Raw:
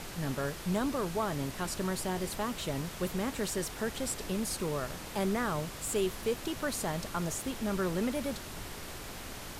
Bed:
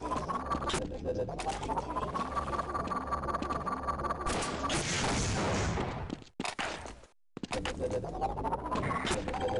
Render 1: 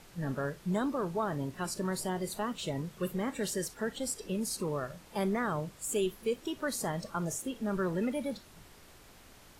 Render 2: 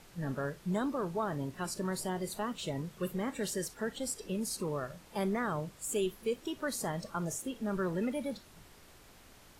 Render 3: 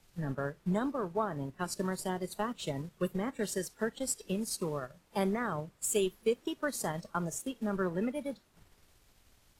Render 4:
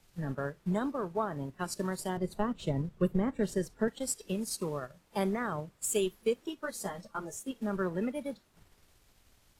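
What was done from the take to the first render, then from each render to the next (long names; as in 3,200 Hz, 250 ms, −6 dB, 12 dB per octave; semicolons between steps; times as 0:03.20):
noise reduction from a noise print 13 dB
level −1.5 dB
transient designer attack +4 dB, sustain −7 dB; multiband upward and downward expander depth 40%
0:02.17–0:03.88: spectral tilt −2.5 dB per octave; 0:06.47–0:07.51: string-ensemble chorus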